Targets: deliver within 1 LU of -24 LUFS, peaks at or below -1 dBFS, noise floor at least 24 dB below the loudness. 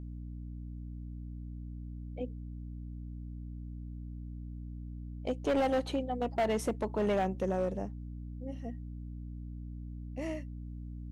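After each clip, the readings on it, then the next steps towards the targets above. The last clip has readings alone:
clipped samples 1.2%; clipping level -24.5 dBFS; hum 60 Hz; highest harmonic 300 Hz; hum level -40 dBFS; loudness -37.5 LUFS; peak level -24.5 dBFS; loudness target -24.0 LUFS
-> clip repair -24.5 dBFS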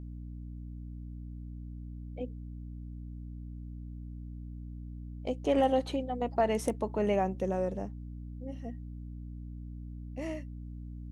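clipped samples 0.0%; hum 60 Hz; highest harmonic 300 Hz; hum level -40 dBFS
-> de-hum 60 Hz, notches 5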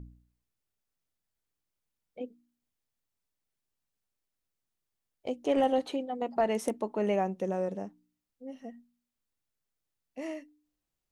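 hum not found; loudness -31.5 LUFS; peak level -15.0 dBFS; loudness target -24.0 LUFS
-> trim +7.5 dB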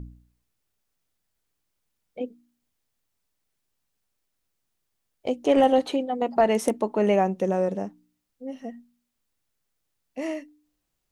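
loudness -24.0 LUFS; peak level -7.5 dBFS; noise floor -79 dBFS

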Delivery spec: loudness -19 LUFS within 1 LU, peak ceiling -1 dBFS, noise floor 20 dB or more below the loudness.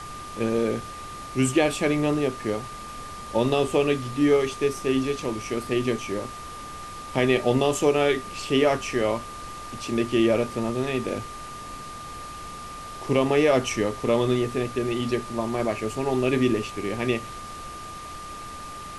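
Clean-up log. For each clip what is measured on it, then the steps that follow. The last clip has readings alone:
steady tone 1.2 kHz; tone level -37 dBFS; noise floor -38 dBFS; noise floor target -45 dBFS; loudness -24.5 LUFS; peak level -7.0 dBFS; loudness target -19.0 LUFS
-> band-stop 1.2 kHz, Q 30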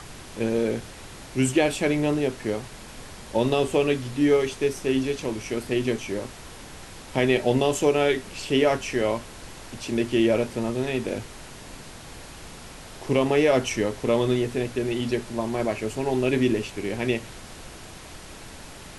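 steady tone not found; noise floor -43 dBFS; noise floor target -45 dBFS
-> noise print and reduce 6 dB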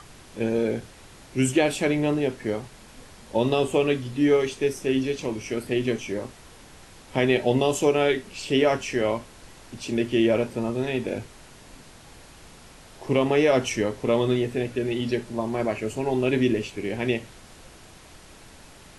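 noise floor -49 dBFS; loudness -25.0 LUFS; peak level -7.5 dBFS; loudness target -19.0 LUFS
-> trim +6 dB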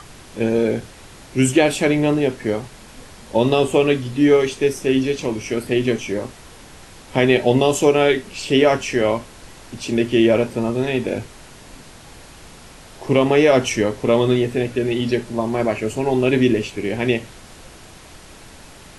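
loudness -19.0 LUFS; peak level -1.5 dBFS; noise floor -43 dBFS

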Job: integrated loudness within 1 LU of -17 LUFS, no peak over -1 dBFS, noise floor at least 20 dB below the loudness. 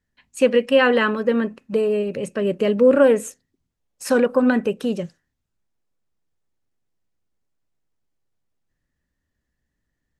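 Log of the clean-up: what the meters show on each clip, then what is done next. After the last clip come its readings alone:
loudness -19.0 LUFS; peak level -3.5 dBFS; loudness target -17.0 LUFS
-> trim +2 dB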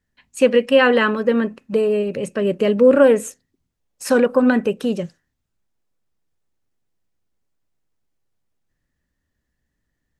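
loudness -17.0 LUFS; peak level -1.5 dBFS; noise floor -76 dBFS

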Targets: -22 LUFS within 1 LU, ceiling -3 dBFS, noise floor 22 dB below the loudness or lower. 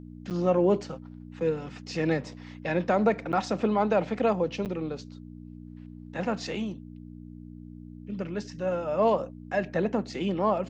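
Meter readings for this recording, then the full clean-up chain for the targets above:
dropouts 3; longest dropout 8.9 ms; hum 60 Hz; highest harmonic 300 Hz; hum level -41 dBFS; loudness -28.5 LUFS; peak level -13.0 dBFS; loudness target -22.0 LUFS
-> interpolate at 0.30/3.32/4.65 s, 8.9 ms; de-hum 60 Hz, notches 5; trim +6.5 dB

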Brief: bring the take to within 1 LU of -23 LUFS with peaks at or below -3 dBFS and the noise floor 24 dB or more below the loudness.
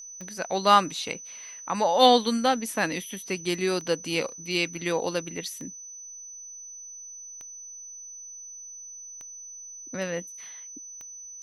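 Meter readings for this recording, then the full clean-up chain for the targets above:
clicks found 7; steady tone 6 kHz; tone level -40 dBFS; loudness -25.5 LUFS; peak level -4.5 dBFS; loudness target -23.0 LUFS
-> de-click; band-stop 6 kHz, Q 30; trim +2.5 dB; peak limiter -3 dBFS

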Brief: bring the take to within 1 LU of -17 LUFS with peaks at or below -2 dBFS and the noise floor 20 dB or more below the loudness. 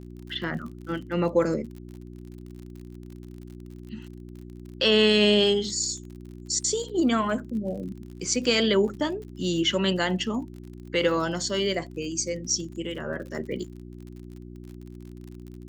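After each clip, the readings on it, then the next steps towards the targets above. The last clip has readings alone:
tick rate 48 per s; hum 60 Hz; highest harmonic 360 Hz; hum level -39 dBFS; loudness -25.5 LUFS; peak level -9.5 dBFS; loudness target -17.0 LUFS
-> de-click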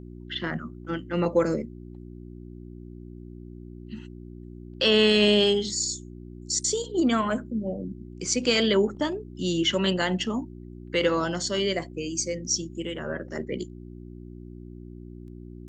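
tick rate 0.13 per s; hum 60 Hz; highest harmonic 360 Hz; hum level -39 dBFS
-> de-hum 60 Hz, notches 6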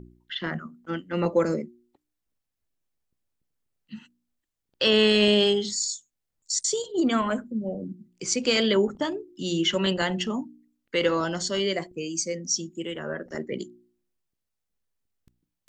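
hum not found; loudness -25.5 LUFS; peak level -9.5 dBFS; loudness target -17.0 LUFS
-> trim +8.5 dB; peak limiter -2 dBFS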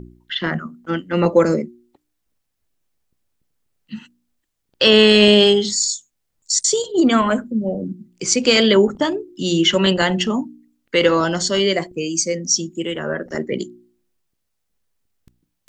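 loudness -17.5 LUFS; peak level -2.0 dBFS; noise floor -74 dBFS

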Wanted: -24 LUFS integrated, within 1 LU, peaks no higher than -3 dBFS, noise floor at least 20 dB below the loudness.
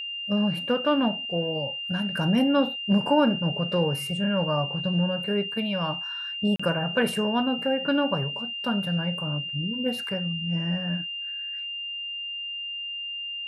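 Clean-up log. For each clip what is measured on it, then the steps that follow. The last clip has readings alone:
dropouts 1; longest dropout 35 ms; steady tone 2.8 kHz; tone level -31 dBFS; loudness -26.0 LUFS; peak level -9.0 dBFS; loudness target -24.0 LUFS
-> interpolate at 6.56 s, 35 ms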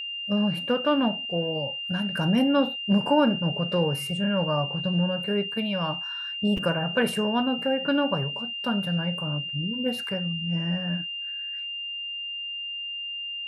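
dropouts 0; steady tone 2.8 kHz; tone level -31 dBFS
-> band-stop 2.8 kHz, Q 30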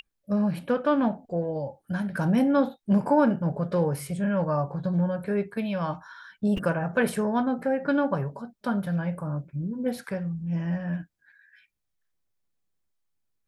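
steady tone not found; loudness -27.0 LUFS; peak level -10.0 dBFS; loudness target -24.0 LUFS
-> trim +3 dB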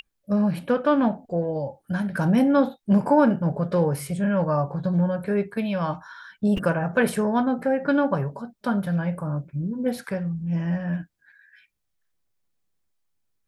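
loudness -24.0 LUFS; peak level -7.0 dBFS; noise floor -76 dBFS

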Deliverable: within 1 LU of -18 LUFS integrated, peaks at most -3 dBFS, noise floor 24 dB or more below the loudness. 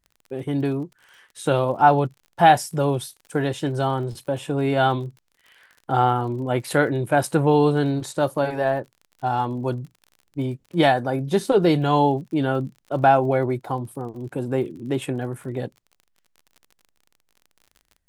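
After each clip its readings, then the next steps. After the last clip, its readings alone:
tick rate 42 per s; loudness -22.5 LUFS; peak level -2.5 dBFS; loudness target -18.0 LUFS
-> de-click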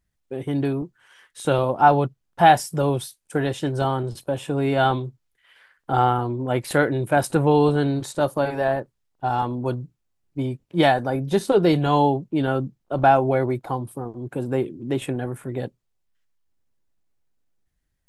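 tick rate 0.055 per s; loudness -22.5 LUFS; peak level -2.5 dBFS; loudness target -18.0 LUFS
-> trim +4.5 dB; peak limiter -3 dBFS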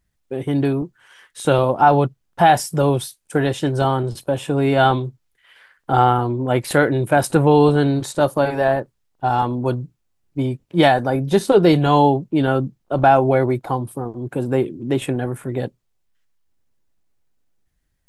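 loudness -18.5 LUFS; peak level -3.0 dBFS; noise floor -70 dBFS

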